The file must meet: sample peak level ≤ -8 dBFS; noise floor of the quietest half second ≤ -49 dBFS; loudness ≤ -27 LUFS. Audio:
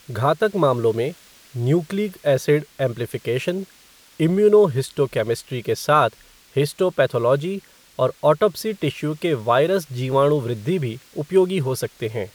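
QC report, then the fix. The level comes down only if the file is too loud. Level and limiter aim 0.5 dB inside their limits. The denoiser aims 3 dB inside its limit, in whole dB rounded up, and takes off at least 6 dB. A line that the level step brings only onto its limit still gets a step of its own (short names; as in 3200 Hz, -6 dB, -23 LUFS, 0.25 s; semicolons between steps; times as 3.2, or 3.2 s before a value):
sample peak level -4.0 dBFS: fail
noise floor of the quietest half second -51 dBFS: OK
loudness -21.0 LUFS: fail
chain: gain -6.5 dB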